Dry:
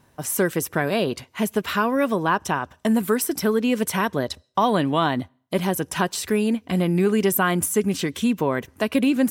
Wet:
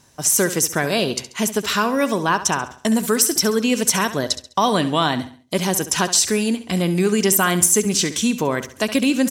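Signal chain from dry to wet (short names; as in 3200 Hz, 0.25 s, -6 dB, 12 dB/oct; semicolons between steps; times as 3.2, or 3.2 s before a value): bell 6300 Hz +15 dB 1.4 oct; on a send: feedback echo 68 ms, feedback 38%, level -13 dB; on the sum: gain +1 dB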